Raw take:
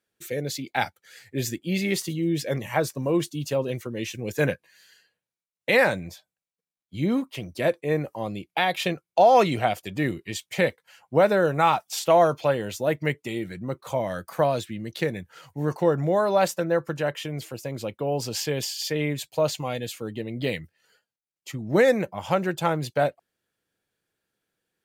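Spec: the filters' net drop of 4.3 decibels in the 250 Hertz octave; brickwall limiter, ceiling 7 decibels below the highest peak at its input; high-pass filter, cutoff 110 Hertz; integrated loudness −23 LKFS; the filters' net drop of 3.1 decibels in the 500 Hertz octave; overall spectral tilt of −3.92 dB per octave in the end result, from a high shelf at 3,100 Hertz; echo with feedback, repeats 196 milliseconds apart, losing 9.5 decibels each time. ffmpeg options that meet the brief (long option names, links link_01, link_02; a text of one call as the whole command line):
ffmpeg -i in.wav -af "highpass=110,equalizer=frequency=250:width_type=o:gain=-5,equalizer=frequency=500:width_type=o:gain=-3,highshelf=frequency=3100:gain=8,alimiter=limit=-12.5dB:level=0:latency=1,aecho=1:1:196|392|588|784:0.335|0.111|0.0365|0.012,volume=4dB" out.wav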